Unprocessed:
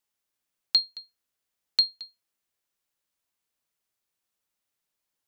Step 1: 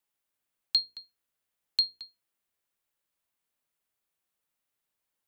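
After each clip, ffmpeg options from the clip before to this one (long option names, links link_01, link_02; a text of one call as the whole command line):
ffmpeg -i in.wav -filter_complex "[0:a]equalizer=frequency=5500:width=1.2:gain=-5,bandreject=frequency=60:width_type=h:width=6,bandreject=frequency=120:width_type=h:width=6,bandreject=frequency=180:width_type=h:width=6,bandreject=frequency=240:width_type=h:width=6,bandreject=frequency=300:width_type=h:width=6,bandreject=frequency=360:width_type=h:width=6,bandreject=frequency=420:width_type=h:width=6,bandreject=frequency=480:width_type=h:width=6,acrossover=split=110|2300[link_01][link_02][link_03];[link_02]alimiter=level_in=9.5dB:limit=-24dB:level=0:latency=1:release=228,volume=-9.5dB[link_04];[link_01][link_04][link_03]amix=inputs=3:normalize=0" out.wav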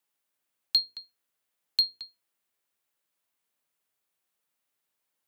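ffmpeg -i in.wav -filter_complex "[0:a]highpass=frequency=150:poles=1,asplit=2[link_01][link_02];[link_02]volume=23.5dB,asoftclip=hard,volume=-23.5dB,volume=-9.5dB[link_03];[link_01][link_03]amix=inputs=2:normalize=0" out.wav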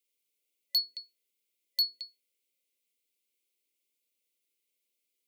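ffmpeg -i in.wav -af "afreqshift=150,afftfilt=real='re*(1-between(b*sr/4096,570,2000))':imag='im*(1-between(b*sr/4096,570,2000))':win_size=4096:overlap=0.75,volume=22.5dB,asoftclip=hard,volume=-22.5dB" out.wav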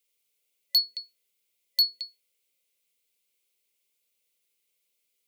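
ffmpeg -i in.wav -af "equalizer=frequency=300:width_type=o:width=0.3:gain=-14,volume=5.5dB" out.wav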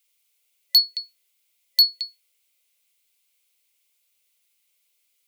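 ffmpeg -i in.wav -af "highpass=670,volume=6.5dB" out.wav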